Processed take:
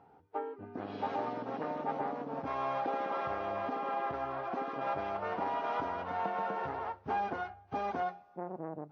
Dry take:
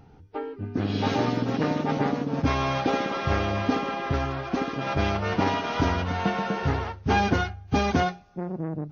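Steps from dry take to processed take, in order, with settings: compression, threshold -26 dBFS, peak gain reduction 9 dB; band-pass filter 810 Hz, Q 1.3

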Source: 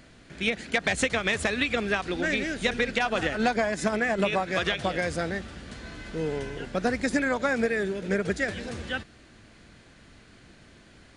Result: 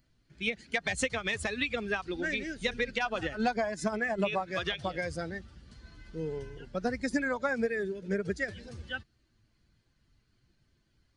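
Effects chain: expander on every frequency bin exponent 1.5; trim -2.5 dB

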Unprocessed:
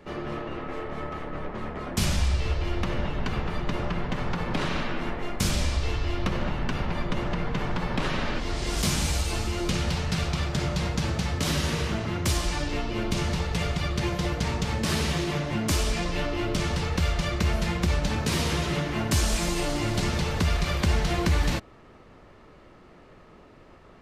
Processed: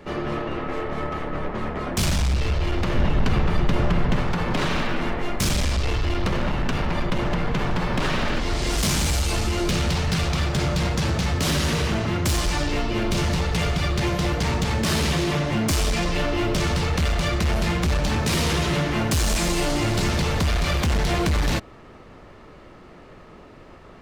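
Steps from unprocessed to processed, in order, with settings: hard clipper -24 dBFS, distortion -11 dB; 2.95–4.21 s: bass shelf 240 Hz +5.5 dB; trim +6 dB

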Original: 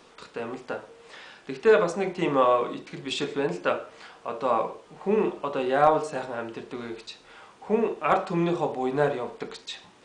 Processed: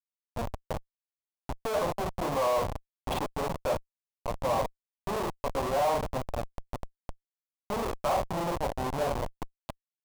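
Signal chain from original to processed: Schmitt trigger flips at -26.5 dBFS; high-order bell 770 Hz +10 dB 1.3 oct; trim -6 dB

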